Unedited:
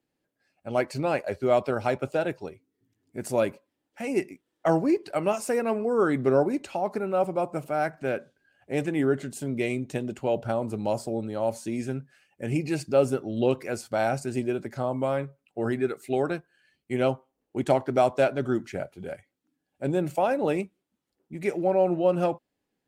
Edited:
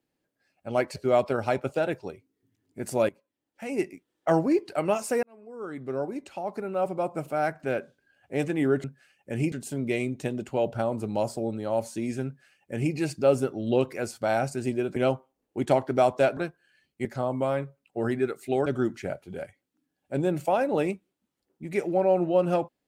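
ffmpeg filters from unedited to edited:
ffmpeg -i in.wav -filter_complex "[0:a]asplit=10[link_01][link_02][link_03][link_04][link_05][link_06][link_07][link_08][link_09][link_10];[link_01]atrim=end=0.962[link_11];[link_02]atrim=start=1.338:end=3.47,asetpts=PTS-STARTPTS,afade=type=out:start_time=2.128:duration=0.004:curve=hsin:silence=0.125893[link_12];[link_03]atrim=start=3.47:end=5.61,asetpts=PTS-STARTPTS,afade=type=in:duration=1.19:curve=qsin:silence=0.125893,afade=type=out:start_time=2.136:duration=0.004:curve=hsin[link_13];[link_04]atrim=start=5.61:end=9.222,asetpts=PTS-STARTPTS,afade=type=in:duration=2.13[link_14];[link_05]atrim=start=11.958:end=12.642[link_15];[link_06]atrim=start=9.218:end=14.662[link_16];[link_07]atrim=start=16.948:end=18.362[link_17];[link_08]atrim=start=16.268:end=16.952[link_18];[link_09]atrim=start=14.658:end=16.272[link_19];[link_10]atrim=start=18.358[link_20];[link_12][link_13][link_14]concat=n=3:v=0:a=1[link_21];[link_11][link_21]acrossfade=duration=0.004:curve1=hsin:curve2=hsin[link_22];[link_22][link_15]acrossfade=duration=0.004:curve1=hsin:curve2=hsin[link_23];[link_23][link_16]acrossfade=duration=0.004:curve1=hsin:curve2=hsin[link_24];[link_24][link_17]acrossfade=duration=0.004:curve1=hsin:curve2=hsin[link_25];[link_25][link_18]acrossfade=duration=0.004:curve1=hsin:curve2=hsin[link_26];[link_26][link_19]acrossfade=duration=0.004:curve1=hsin:curve2=hsin[link_27];[link_27][link_20]acrossfade=duration=0.004:curve1=hsin:curve2=hsin" out.wav

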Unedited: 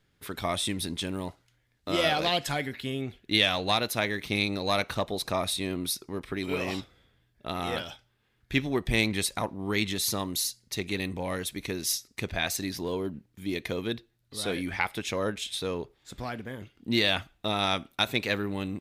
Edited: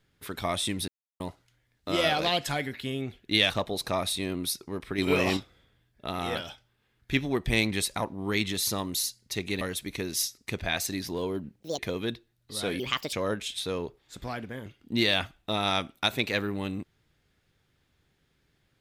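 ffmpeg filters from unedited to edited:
ffmpeg -i in.wav -filter_complex "[0:a]asplit=11[link_01][link_02][link_03][link_04][link_05][link_06][link_07][link_08][link_09][link_10][link_11];[link_01]atrim=end=0.88,asetpts=PTS-STARTPTS,afade=type=out:start_time=0.876:duration=0.004:curve=hsin[link_12];[link_02]atrim=start=0.88:end=1.2,asetpts=PTS-STARTPTS,volume=0[link_13];[link_03]atrim=start=1.2:end=3.502,asetpts=PTS-STARTPTS,afade=type=in:duration=0.004:curve=hsin[link_14];[link_04]atrim=start=4.908:end=6.392[link_15];[link_05]atrim=start=6.388:end=6.782,asetpts=PTS-STARTPTS,volume=6dB[link_16];[link_06]atrim=start=6.778:end=11.022[link_17];[link_07]atrim=start=11.308:end=13.304[link_18];[link_08]atrim=start=13.3:end=13.61,asetpts=PTS-STARTPTS,asetrate=74088,aresample=44100[link_19];[link_09]atrim=start=13.606:end=14.624[link_20];[link_10]atrim=start=14.62:end=15.09,asetpts=PTS-STARTPTS,asetrate=61740,aresample=44100,atrim=end_sample=14805,asetpts=PTS-STARTPTS[link_21];[link_11]atrim=start=15.086[link_22];[link_12][link_13][link_14]concat=n=3:v=0:a=1[link_23];[link_23][link_15]acrossfade=duration=0.004:curve1=hsin:curve2=hsin[link_24];[link_24][link_16]acrossfade=duration=0.004:curve1=hsin:curve2=hsin[link_25];[link_25][link_17]acrossfade=duration=0.004:curve1=hsin:curve2=hsin[link_26];[link_26][link_18]acrossfade=duration=0.004:curve1=hsin:curve2=hsin[link_27];[link_27][link_19]acrossfade=duration=0.004:curve1=hsin:curve2=hsin[link_28];[link_28][link_20]acrossfade=duration=0.004:curve1=hsin:curve2=hsin[link_29];[link_29][link_21]acrossfade=duration=0.004:curve1=hsin:curve2=hsin[link_30];[link_30][link_22]acrossfade=duration=0.004:curve1=hsin:curve2=hsin" out.wav

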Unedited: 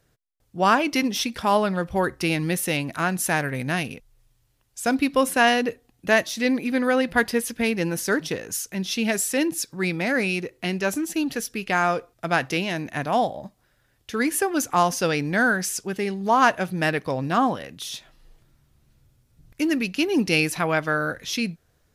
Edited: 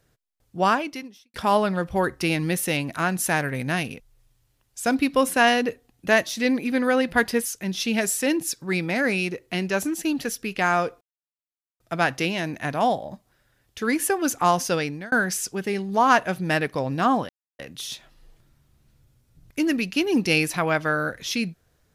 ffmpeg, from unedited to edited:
ffmpeg -i in.wav -filter_complex "[0:a]asplit=6[link_01][link_02][link_03][link_04][link_05][link_06];[link_01]atrim=end=1.34,asetpts=PTS-STARTPTS,afade=type=out:start_time=0.62:duration=0.72:curve=qua[link_07];[link_02]atrim=start=1.34:end=7.462,asetpts=PTS-STARTPTS,afade=type=in:duration=0.004:curve=hsin[link_08];[link_03]atrim=start=8.568:end=12.12,asetpts=PTS-STARTPTS,afade=type=out:start_time=3.548:duration=0.004:curve=hsin,apad=pad_dur=0.79[link_09];[link_04]atrim=start=12.12:end=15.44,asetpts=PTS-STARTPTS,afade=type=in:duration=0.004:curve=hsin,afade=type=out:start_time=2.78:duration=0.54:curve=qsin[link_10];[link_05]atrim=start=15.44:end=17.61,asetpts=PTS-STARTPTS,afade=type=in:duration=0.004:curve=hsin,afade=type=out:start_time=2.166:duration=0.004:curve=hsin,apad=pad_dur=0.3[link_11];[link_06]atrim=start=17.61,asetpts=PTS-STARTPTS,afade=type=in:duration=0.004:curve=hsin[link_12];[link_07][link_08]concat=n=2:v=0:a=1[link_13];[link_09][link_10][link_11][link_12]concat=n=4:v=0:a=1[link_14];[link_13][link_14]acrossfade=duration=0.004:curve1=hsin:curve2=hsin" out.wav

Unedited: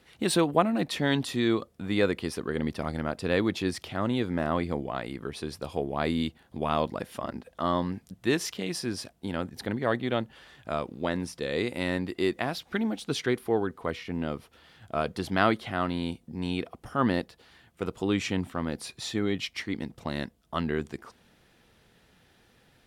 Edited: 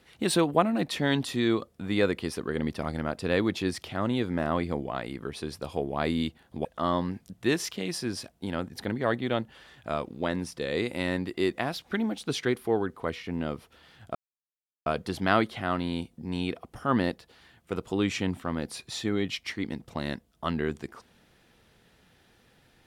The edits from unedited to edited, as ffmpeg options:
ffmpeg -i in.wav -filter_complex "[0:a]asplit=3[link_01][link_02][link_03];[link_01]atrim=end=6.652[link_04];[link_02]atrim=start=7.458:end=14.96,asetpts=PTS-STARTPTS,afade=type=out:start_time=7.498:duration=0.004:curve=hsin,apad=pad_dur=0.71[link_05];[link_03]atrim=start=14.96,asetpts=PTS-STARTPTS,afade=type=in:duration=0.004:curve=hsin[link_06];[link_05][link_06]concat=n=2:v=0:a=1[link_07];[link_04][link_07]acrossfade=duration=0.004:curve1=hsin:curve2=hsin" out.wav

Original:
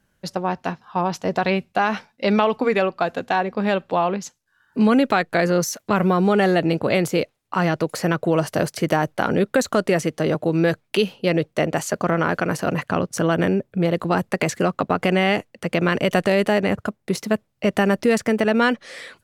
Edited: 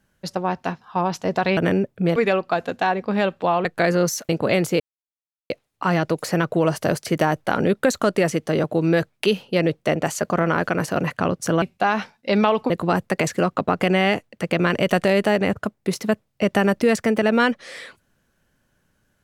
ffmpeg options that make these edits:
ffmpeg -i in.wav -filter_complex "[0:a]asplit=8[link_01][link_02][link_03][link_04][link_05][link_06][link_07][link_08];[link_01]atrim=end=1.572[link_09];[link_02]atrim=start=13.328:end=13.922[link_10];[link_03]atrim=start=2.648:end=4.142[link_11];[link_04]atrim=start=5.198:end=5.842[link_12];[link_05]atrim=start=6.698:end=7.21,asetpts=PTS-STARTPTS,afade=type=out:start_time=0.508:duration=0.004:curve=hsin,apad=pad_dur=0.7[link_13];[link_06]atrim=start=7.21:end=13.332,asetpts=PTS-STARTPTS,afade=type=in:duration=0.004:curve=hsin[link_14];[link_07]atrim=start=1.568:end=2.652[link_15];[link_08]atrim=start=13.918[link_16];[link_09][link_10]acrossfade=duration=0.004:curve1=hsin:curve2=hsin[link_17];[link_17][link_11]acrossfade=duration=0.004:curve1=hsin:curve2=hsin[link_18];[link_18][link_12]acrossfade=duration=0.004:curve1=hsin:curve2=hsin[link_19];[link_13][link_14]concat=n=2:v=0:a=1[link_20];[link_19][link_20]acrossfade=duration=0.004:curve1=hsin:curve2=hsin[link_21];[link_21][link_15]acrossfade=duration=0.004:curve1=hsin:curve2=hsin[link_22];[link_22][link_16]acrossfade=duration=0.004:curve1=hsin:curve2=hsin" out.wav

